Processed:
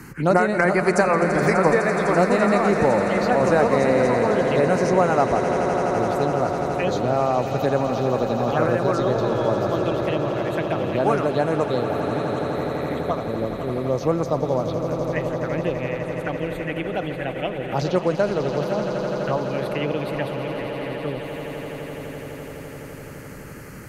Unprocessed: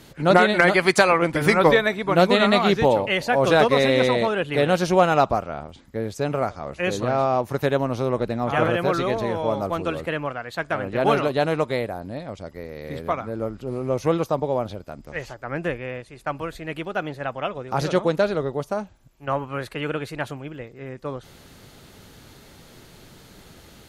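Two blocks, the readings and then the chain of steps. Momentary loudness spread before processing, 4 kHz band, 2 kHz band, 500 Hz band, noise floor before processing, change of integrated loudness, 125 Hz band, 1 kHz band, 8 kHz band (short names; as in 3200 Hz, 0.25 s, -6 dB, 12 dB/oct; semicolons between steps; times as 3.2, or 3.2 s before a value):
17 LU, -6.5 dB, -2.5 dB, +1.5 dB, -49 dBFS, 0.0 dB, +2.5 dB, +0.5 dB, n/a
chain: short-mantissa float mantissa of 8-bit; envelope phaser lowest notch 580 Hz, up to 3400 Hz, full sweep at -17 dBFS; swelling echo 84 ms, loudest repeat 8, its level -14 dB; three-band squash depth 40%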